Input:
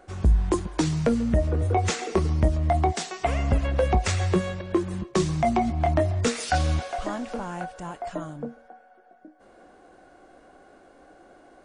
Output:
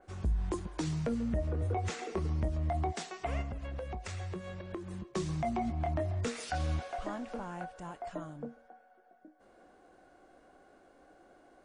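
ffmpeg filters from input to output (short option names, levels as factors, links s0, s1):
-filter_complex "[0:a]alimiter=limit=0.15:level=0:latency=1:release=105,asettb=1/sr,asplit=3[s0][s1][s2];[s0]atrim=end=3.414[s3];[s1]atrim=start=3.41:end=5.15,asetpts=PTS-STARTPTS,afade=t=in:d=0.004:c=qsin,afade=t=out:st=1.736:d=0.004:c=qsin,acompressor=threshold=0.0355:ratio=6[s4];[s2]atrim=start=5.146[s5];[s3][s4]acrossfade=d=0.004:c1=hsin:c2=qsin[s6];[s6][s5]acrossfade=d=0.004:c1=qsin:c2=hsin,adynamicequalizer=threshold=0.00447:dfrequency=3300:dqfactor=0.7:tfrequency=3300:tqfactor=0.7:attack=5:release=100:ratio=0.375:range=2.5:mode=cutabove:tftype=highshelf,volume=0.398"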